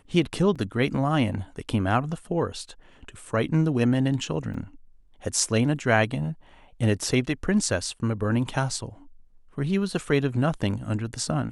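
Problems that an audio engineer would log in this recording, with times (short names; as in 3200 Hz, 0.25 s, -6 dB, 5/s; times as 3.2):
0.55–0.56 gap 6.1 ms
4.54 gap 4.5 ms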